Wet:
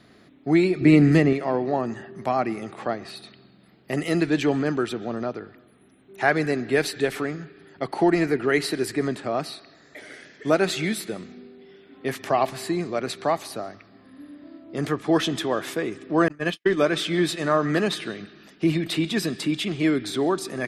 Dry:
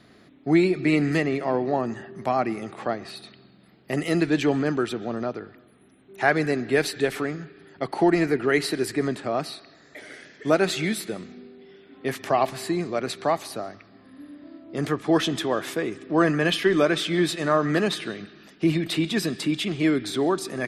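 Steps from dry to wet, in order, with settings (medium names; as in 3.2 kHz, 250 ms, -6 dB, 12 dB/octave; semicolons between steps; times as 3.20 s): 0.81–1.33 s: bass shelf 440 Hz +9.5 dB; 16.28–16.93 s: gate -20 dBFS, range -56 dB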